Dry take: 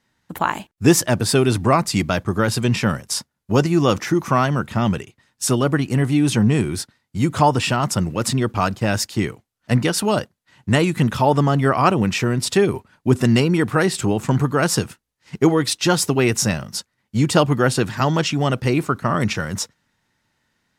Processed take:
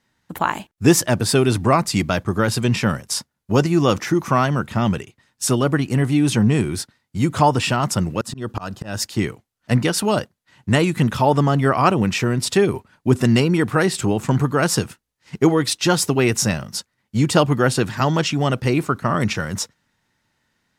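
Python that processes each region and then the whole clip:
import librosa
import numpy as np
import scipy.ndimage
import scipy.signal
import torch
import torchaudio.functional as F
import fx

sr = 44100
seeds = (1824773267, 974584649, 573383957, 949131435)

y = fx.chain(x, sr, fx.notch(hz=2200.0, q=5.3),
    fx.auto_swell(attack_ms=227.0), at=(8.21, 9.02))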